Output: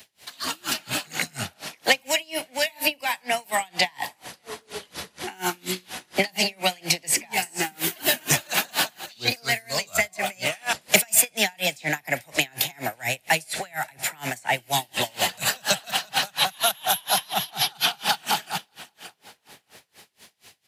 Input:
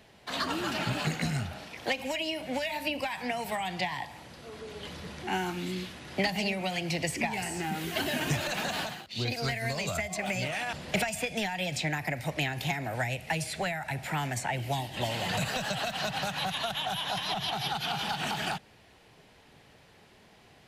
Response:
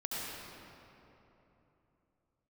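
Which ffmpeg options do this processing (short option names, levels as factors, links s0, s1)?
-filter_complex "[0:a]highpass=62,acrossover=split=200|1700|3200[s0][s1][s2][s3];[s1]dynaudnorm=f=190:g=11:m=2.51[s4];[s0][s4][s2][s3]amix=inputs=4:normalize=0,aecho=1:1:581|1162:0.0891|0.0294,crystalizer=i=9.5:c=0,asettb=1/sr,asplit=3[s5][s6][s7];[s5]atrim=end=16.504[s8];[s6]atrim=start=16.5:end=17.51,asetpts=PTS-STARTPTS,afade=t=in:d=0.004:c=qsin,afade=t=out:st=1.006:d=0.004:c=qsin,equalizer=f=12000:t=o:w=0.33:g=10.5[s9];[s7]atrim=start=17.506[s10];[s8][s9]acrossfade=d=0.004:c1=hsin:c2=qsin[s11];[s11][s10]acrossfade=d=0.004:c1=qsin:c2=hsin,asoftclip=type=tanh:threshold=0.841,asettb=1/sr,asplit=3[s12][s13][s14];[s12]atrim=end=10.814[s15];[s13]atrim=start=10.81:end=11.3,asetpts=PTS-STARTPTS,afade=t=in:d=0.004:c=qsin,afade=t=out:st=0.486:d=0.004:c=qsin,highshelf=f=7700:g=8.5[s16];[s14]atrim=start=11.296[s17];[s15][s16]acrossfade=d=0.004:c1=hsin:c2=qsin[s18];[s18][s17]acrossfade=d=0.004:c1=qsin:c2=hsin,aeval=exprs='val(0)*pow(10,-31*(0.5-0.5*cos(2*PI*4.2*n/s))/20)':c=same"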